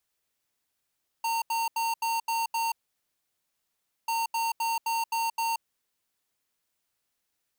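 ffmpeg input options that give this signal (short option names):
-f lavfi -i "aevalsrc='0.0398*(2*lt(mod(915*t,1),0.5)-1)*clip(min(mod(mod(t,2.84),0.26),0.18-mod(mod(t,2.84),0.26))/0.005,0,1)*lt(mod(t,2.84),1.56)':d=5.68:s=44100"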